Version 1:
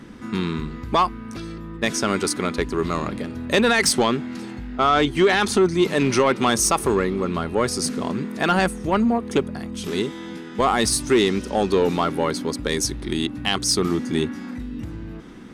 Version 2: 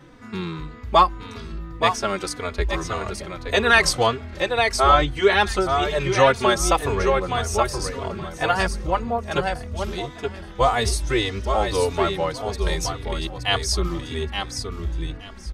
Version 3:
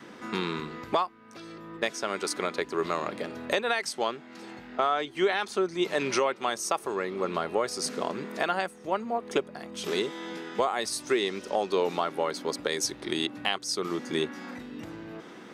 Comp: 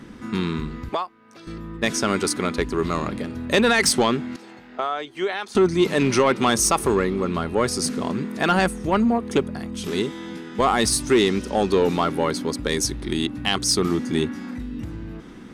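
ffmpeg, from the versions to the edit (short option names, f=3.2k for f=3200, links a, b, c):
-filter_complex "[2:a]asplit=2[a][b];[0:a]asplit=3[c][d][e];[c]atrim=end=0.892[f];[a]atrim=start=0.888:end=1.472[g];[d]atrim=start=1.468:end=4.362[h];[b]atrim=start=4.358:end=5.552[i];[e]atrim=start=5.548[j];[f][g]acrossfade=d=0.004:c1=hsin:c2=hsin[k];[k][h]acrossfade=d=0.004:c1=hsin:c2=hsin[l];[l][i]acrossfade=d=0.004:c1=hsin:c2=hsin[m];[m][j]acrossfade=d=0.004:c1=hsin:c2=hsin"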